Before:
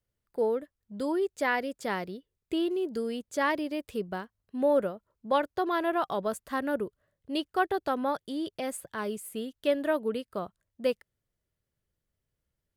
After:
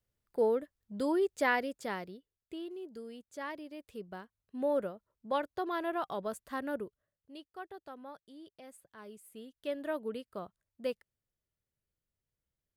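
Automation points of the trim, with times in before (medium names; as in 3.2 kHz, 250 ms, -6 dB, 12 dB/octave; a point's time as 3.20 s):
1.49 s -1 dB
2.58 s -13.5 dB
3.70 s -13.5 dB
4.56 s -6.5 dB
6.77 s -6.5 dB
7.38 s -18.5 dB
8.84 s -18.5 dB
9.99 s -7.5 dB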